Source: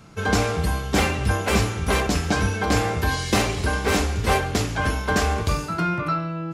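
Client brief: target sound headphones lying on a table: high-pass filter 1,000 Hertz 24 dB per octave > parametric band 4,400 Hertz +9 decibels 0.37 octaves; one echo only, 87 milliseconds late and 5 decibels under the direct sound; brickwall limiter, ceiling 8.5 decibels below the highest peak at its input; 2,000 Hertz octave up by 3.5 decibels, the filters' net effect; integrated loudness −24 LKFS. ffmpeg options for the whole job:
ffmpeg -i in.wav -af "equalizer=frequency=2000:width_type=o:gain=4.5,alimiter=limit=-15.5dB:level=0:latency=1,highpass=frequency=1000:width=0.5412,highpass=frequency=1000:width=1.3066,equalizer=frequency=4400:width_type=o:width=0.37:gain=9,aecho=1:1:87:0.562,volume=2dB" out.wav

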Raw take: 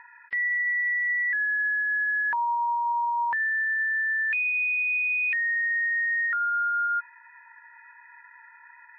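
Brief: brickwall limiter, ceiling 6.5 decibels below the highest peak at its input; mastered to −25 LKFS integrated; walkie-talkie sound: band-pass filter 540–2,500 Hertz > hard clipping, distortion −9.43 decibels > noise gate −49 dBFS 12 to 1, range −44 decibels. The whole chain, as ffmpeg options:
ffmpeg -i in.wav -af "alimiter=level_in=4dB:limit=-24dB:level=0:latency=1,volume=-4dB,highpass=540,lowpass=2500,asoftclip=type=hard:threshold=-39dB,agate=range=-44dB:threshold=-49dB:ratio=12,volume=13dB" out.wav

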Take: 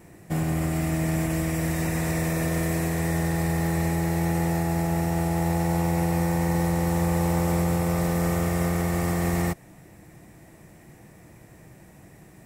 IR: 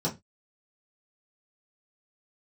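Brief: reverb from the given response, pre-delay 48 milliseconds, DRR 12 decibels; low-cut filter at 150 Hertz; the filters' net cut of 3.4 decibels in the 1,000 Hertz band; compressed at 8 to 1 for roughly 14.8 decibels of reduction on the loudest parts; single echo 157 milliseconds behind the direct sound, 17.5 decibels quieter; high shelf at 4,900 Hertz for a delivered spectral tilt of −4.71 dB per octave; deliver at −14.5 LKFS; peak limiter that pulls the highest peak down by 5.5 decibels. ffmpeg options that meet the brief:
-filter_complex "[0:a]highpass=150,equalizer=frequency=1000:width_type=o:gain=-5,highshelf=frequency=4900:gain=7.5,acompressor=threshold=-38dB:ratio=8,alimiter=level_in=8.5dB:limit=-24dB:level=0:latency=1,volume=-8.5dB,aecho=1:1:157:0.133,asplit=2[link_01][link_02];[1:a]atrim=start_sample=2205,adelay=48[link_03];[link_02][link_03]afir=irnorm=-1:irlink=0,volume=-19.5dB[link_04];[link_01][link_04]amix=inputs=2:normalize=0,volume=25dB"

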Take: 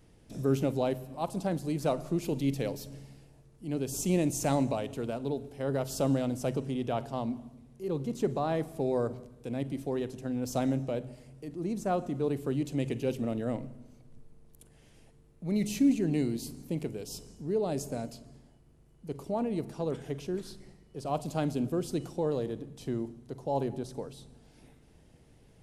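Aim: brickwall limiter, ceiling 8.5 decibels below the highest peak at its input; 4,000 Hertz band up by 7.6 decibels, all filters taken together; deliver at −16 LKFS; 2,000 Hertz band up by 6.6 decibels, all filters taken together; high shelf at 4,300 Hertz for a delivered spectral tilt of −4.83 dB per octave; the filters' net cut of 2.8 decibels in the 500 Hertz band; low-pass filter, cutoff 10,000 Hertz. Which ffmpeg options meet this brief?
ffmpeg -i in.wav -af "lowpass=10000,equalizer=frequency=500:width_type=o:gain=-4,equalizer=frequency=2000:width_type=o:gain=6,equalizer=frequency=4000:width_type=o:gain=3.5,highshelf=frequency=4300:gain=8,volume=18.5dB,alimiter=limit=-2.5dB:level=0:latency=1" out.wav

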